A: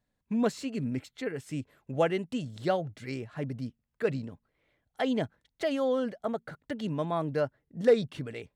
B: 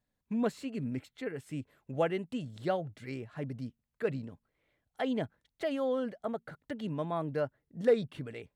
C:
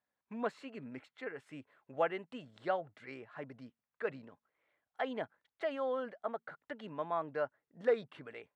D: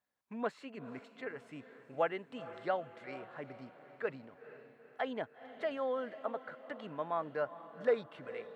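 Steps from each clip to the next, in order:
dynamic bell 5.8 kHz, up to -7 dB, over -59 dBFS, Q 1.3; trim -3.5 dB
band-pass filter 1.2 kHz, Q 0.91; trim +2 dB
echo that smears into a reverb 463 ms, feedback 53%, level -14 dB

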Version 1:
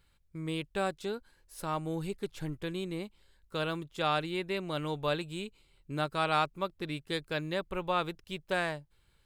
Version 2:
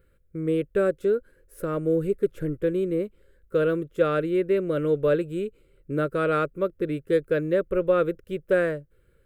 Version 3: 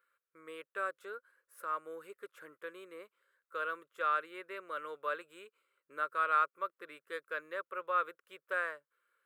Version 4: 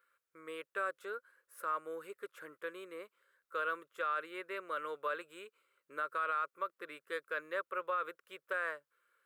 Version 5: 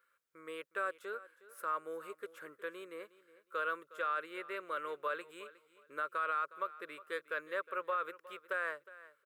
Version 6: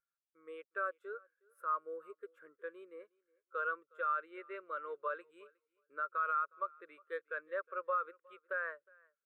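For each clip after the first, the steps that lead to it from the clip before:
FFT filter 230 Hz 0 dB, 520 Hz +11 dB, 820 Hz -20 dB, 1.4 kHz 0 dB, 4.4 kHz -19 dB, 13 kHz -4 dB; trim +6.5 dB
resonant high-pass 1.1 kHz, resonance Q 3.5; trim -9 dB
peak limiter -29 dBFS, peak gain reduction 10 dB; trim +2.5 dB
feedback delay 362 ms, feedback 23%, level -18 dB
spectral contrast expander 1.5:1; trim +1 dB

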